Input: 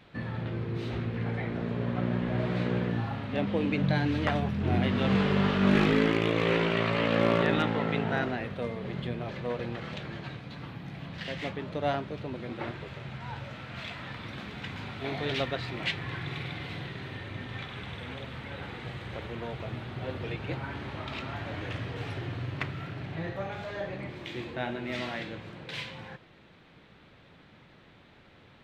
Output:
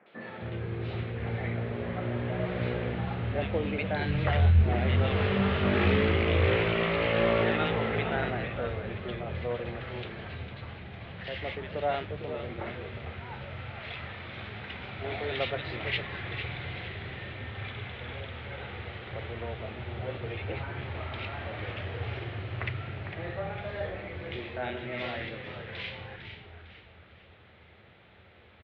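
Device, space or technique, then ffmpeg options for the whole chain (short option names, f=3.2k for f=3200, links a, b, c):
frequency-shifting delay pedal into a guitar cabinet: -filter_complex "[0:a]asplit=6[a][b][c][d][e][f];[b]adelay=453,afreqshift=-110,volume=-8.5dB[g];[c]adelay=906,afreqshift=-220,volume=-16dB[h];[d]adelay=1359,afreqshift=-330,volume=-23.6dB[i];[e]adelay=1812,afreqshift=-440,volume=-31.1dB[j];[f]adelay=2265,afreqshift=-550,volume=-38.6dB[k];[a][g][h][i][j][k]amix=inputs=6:normalize=0,highpass=76,equalizer=f=83:t=q:w=4:g=9,equalizer=f=150:t=q:w=4:g=-8,equalizer=f=280:t=q:w=4:g=-9,equalizer=f=1k:t=q:w=4:g=-5,equalizer=f=2.1k:t=q:w=4:g=3,lowpass=f=3.5k:w=0.5412,lowpass=f=3.5k:w=1.3066,acrossover=split=200|1800[l][m][n];[n]adelay=60[o];[l]adelay=260[p];[p][m][o]amix=inputs=3:normalize=0,asplit=3[q][r][s];[q]afade=t=out:st=4.01:d=0.02[t];[r]asubboost=boost=4:cutoff=110,afade=t=in:st=4.01:d=0.02,afade=t=out:st=4.66:d=0.02[u];[s]afade=t=in:st=4.66:d=0.02[v];[t][u][v]amix=inputs=3:normalize=0,volume=1.5dB"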